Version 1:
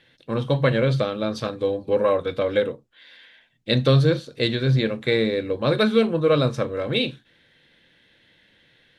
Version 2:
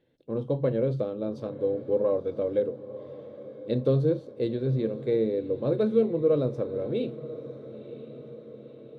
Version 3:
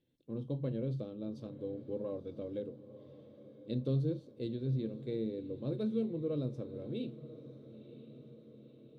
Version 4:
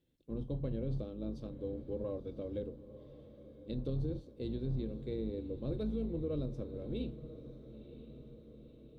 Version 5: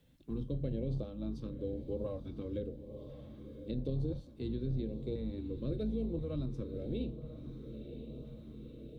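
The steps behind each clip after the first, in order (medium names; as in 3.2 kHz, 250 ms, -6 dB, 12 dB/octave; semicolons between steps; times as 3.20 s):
FFT filter 160 Hz 0 dB, 420 Hz +7 dB, 1.7 kHz -14 dB; echo that smears into a reverb 994 ms, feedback 56%, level -15 dB; trim -8.5 dB
high-order bell 940 Hz -9 dB 2.7 oct; trim -6.5 dB
octave divider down 2 oct, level -3 dB; peak limiter -28.5 dBFS, peak gain reduction 7 dB
LFO notch saw up 0.97 Hz 320–2000 Hz; three bands compressed up and down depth 40%; trim +1.5 dB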